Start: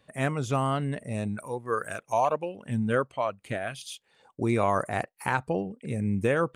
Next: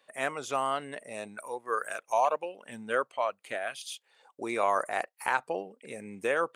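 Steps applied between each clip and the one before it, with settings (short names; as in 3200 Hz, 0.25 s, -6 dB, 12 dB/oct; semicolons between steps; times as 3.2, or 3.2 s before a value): HPF 520 Hz 12 dB/oct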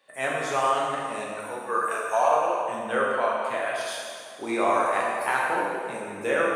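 plate-style reverb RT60 2.3 s, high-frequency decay 0.8×, DRR -5 dB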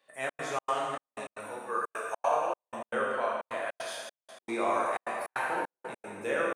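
step gate "xxx.xx.xxx..x.xx" 154 bpm -60 dB; gain -6 dB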